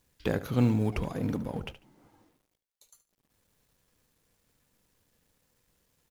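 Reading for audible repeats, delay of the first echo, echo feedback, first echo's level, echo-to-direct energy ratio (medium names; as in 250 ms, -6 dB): 2, 73 ms, 19%, -14.0 dB, -14.0 dB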